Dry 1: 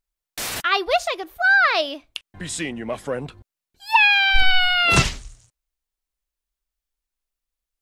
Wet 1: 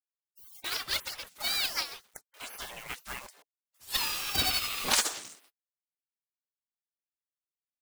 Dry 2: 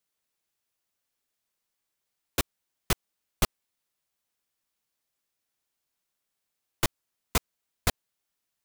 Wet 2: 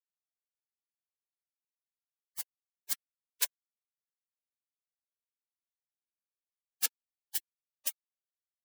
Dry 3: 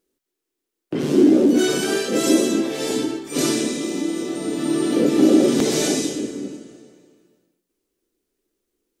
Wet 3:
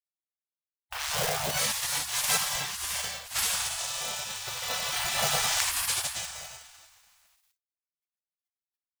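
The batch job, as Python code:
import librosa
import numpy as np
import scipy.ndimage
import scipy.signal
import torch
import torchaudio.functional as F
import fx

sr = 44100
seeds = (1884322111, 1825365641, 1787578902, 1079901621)

y = fx.quant_companded(x, sr, bits=6)
y = fx.spec_gate(y, sr, threshold_db=-25, keep='weak')
y = F.gain(torch.from_numpy(y), 5.0).numpy()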